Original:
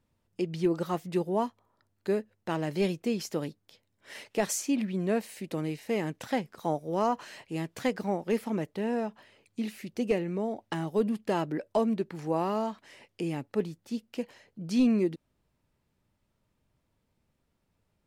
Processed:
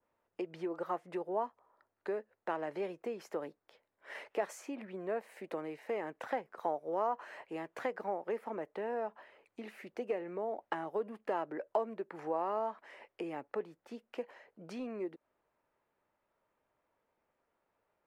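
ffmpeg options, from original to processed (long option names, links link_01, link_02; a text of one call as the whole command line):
ffmpeg -i in.wav -filter_complex "[0:a]asettb=1/sr,asplit=3[link_01][link_02][link_03];[link_01]atrim=end=0.944[link_04];[link_02]atrim=start=0.94:end=2.96,asetpts=PTS-STARTPTS,afade=type=in:duration=0.004:curve=qsin,afade=type=out:start_time=2.016:duration=0.004:curve=qsin,lowpass=frequency=12000:width=0.5412,lowpass=frequency=12000:width=1.3066[link_05];[link_03]atrim=start=2.956[link_06];[link_04][link_05]acrossfade=duration=0.004:curve1=hsin:curve2=qsin[link_07];[link_07][link_06]acrossfade=duration=0.004:curve1=qsin:curve2=hsin,adynamicequalizer=threshold=0.00282:dfrequency=3700:dqfactor=0.76:tfrequency=3700:tqfactor=0.76:attack=5:release=100:ratio=0.375:range=2.5:mode=cutabove:tftype=bell,acompressor=threshold=-33dB:ratio=3,acrossover=split=400 2100:gain=0.0708 1 0.112[link_08][link_09][link_10];[link_08][link_09][link_10]amix=inputs=3:normalize=0,volume=4dB" out.wav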